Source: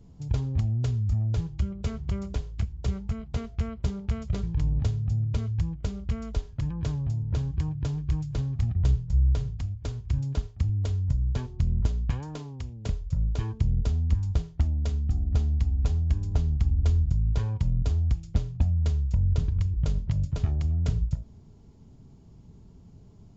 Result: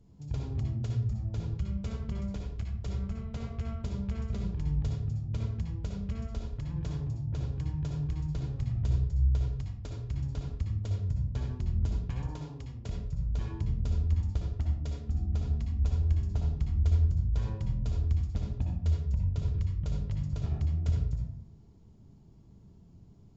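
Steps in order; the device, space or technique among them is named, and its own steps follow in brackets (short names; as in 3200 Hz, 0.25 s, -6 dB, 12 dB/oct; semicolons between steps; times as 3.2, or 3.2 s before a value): bathroom (reverb RT60 0.65 s, pre-delay 56 ms, DRR 0.5 dB); gain -8 dB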